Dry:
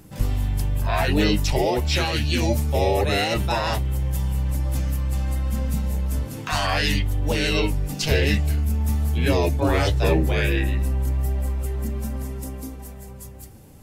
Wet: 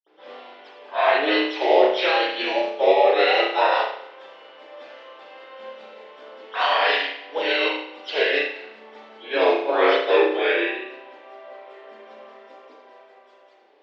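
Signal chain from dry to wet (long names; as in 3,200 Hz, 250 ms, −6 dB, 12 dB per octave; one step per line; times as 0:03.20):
Butterworth high-pass 380 Hz 36 dB per octave
convolution reverb RT60 0.85 s, pre-delay 47 ms
expander for the loud parts 1.5 to 1, over −32 dBFS
level +3 dB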